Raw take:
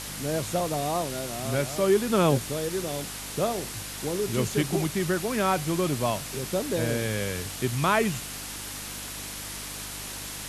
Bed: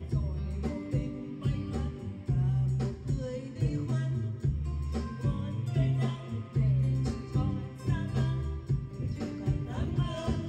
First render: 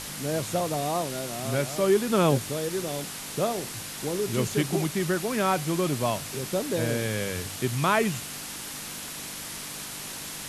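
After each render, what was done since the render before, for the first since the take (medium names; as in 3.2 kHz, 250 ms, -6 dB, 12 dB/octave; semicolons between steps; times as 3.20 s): de-hum 50 Hz, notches 2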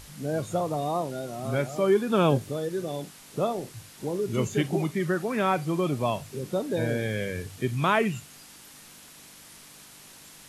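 noise print and reduce 12 dB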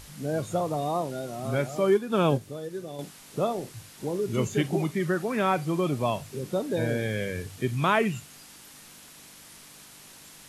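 1.90–2.99 s: upward expansion, over -30 dBFS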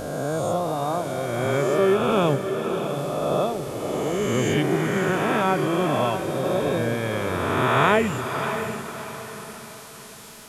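reverse spectral sustain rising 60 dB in 2.26 s; echo that smears into a reverb 617 ms, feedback 42%, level -7.5 dB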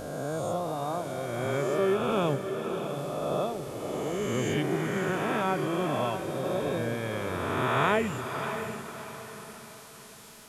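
trim -6.5 dB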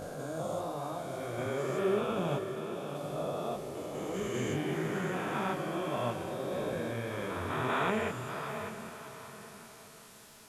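spectrogram pixelated in time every 200 ms; detune thickener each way 57 cents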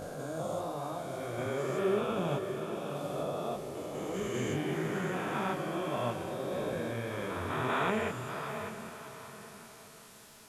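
2.39–3.23 s: doubling 43 ms -4 dB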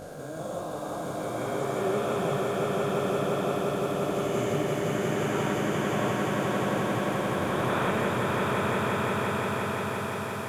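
echo with a slow build-up 174 ms, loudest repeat 5, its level -4 dB; bit-crushed delay 82 ms, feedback 80%, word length 9-bit, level -12 dB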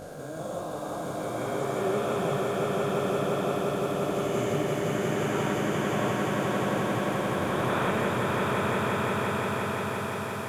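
no audible change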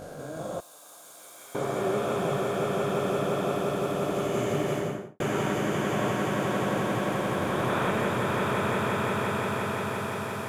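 0.60–1.55 s: differentiator; 4.73–5.20 s: studio fade out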